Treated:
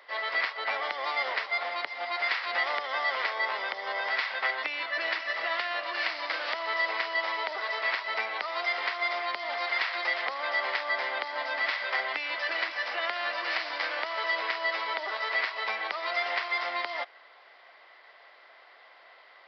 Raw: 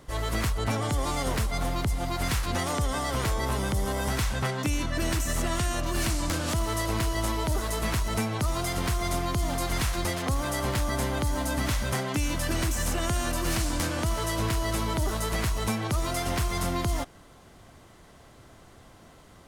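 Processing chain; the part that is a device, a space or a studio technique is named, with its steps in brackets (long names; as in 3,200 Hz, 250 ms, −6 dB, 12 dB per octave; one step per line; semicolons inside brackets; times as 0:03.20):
musical greeting card (downsampling to 11,025 Hz; high-pass filter 570 Hz 24 dB per octave; parametric band 2,000 Hz +10 dB 0.47 octaves)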